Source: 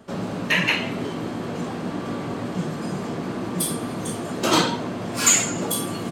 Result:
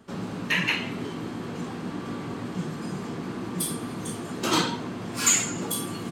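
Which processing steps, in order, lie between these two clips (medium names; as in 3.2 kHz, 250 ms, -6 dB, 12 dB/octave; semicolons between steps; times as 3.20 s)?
peaking EQ 610 Hz -7 dB 0.55 oct; trim -4 dB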